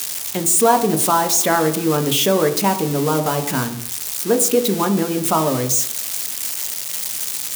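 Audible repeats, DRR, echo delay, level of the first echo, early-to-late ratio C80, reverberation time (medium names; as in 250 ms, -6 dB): no echo, 7.0 dB, no echo, no echo, 14.5 dB, 0.70 s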